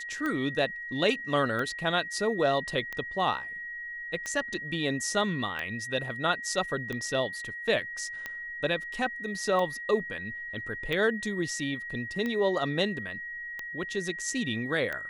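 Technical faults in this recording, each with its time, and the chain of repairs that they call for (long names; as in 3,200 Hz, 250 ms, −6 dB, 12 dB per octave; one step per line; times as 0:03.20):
scratch tick 45 rpm −20 dBFS
whistle 1,900 Hz −36 dBFS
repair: click removal
notch filter 1,900 Hz, Q 30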